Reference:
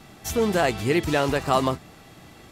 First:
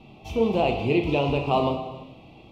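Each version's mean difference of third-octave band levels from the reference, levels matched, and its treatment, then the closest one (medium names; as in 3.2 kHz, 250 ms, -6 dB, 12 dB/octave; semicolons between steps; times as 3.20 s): 8.0 dB: FFT filter 990 Hz 0 dB, 1.7 kHz -28 dB, 2.5 kHz +4 dB, 7.6 kHz -24 dB; on a send: flutter echo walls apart 6 m, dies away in 0.23 s; on the sum: gated-style reverb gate 480 ms falling, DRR 6 dB; trim -1.5 dB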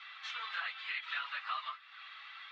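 19.5 dB: phase randomisation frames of 50 ms; elliptic band-pass 1.2–3.8 kHz, stop band 60 dB; compression 2.5:1, threshold -48 dBFS, peak gain reduction 16 dB; trim +5 dB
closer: first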